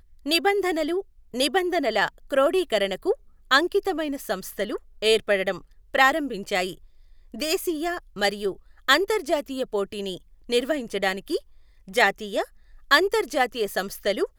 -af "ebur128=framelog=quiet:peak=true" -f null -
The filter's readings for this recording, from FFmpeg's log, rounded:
Integrated loudness:
  I:         -24.3 LUFS
  Threshold: -34.7 LUFS
Loudness range:
  LRA:         2.3 LU
  Threshold: -44.9 LUFS
  LRA low:   -26.0 LUFS
  LRA high:  -23.7 LUFS
True peak:
  Peak:       -2.8 dBFS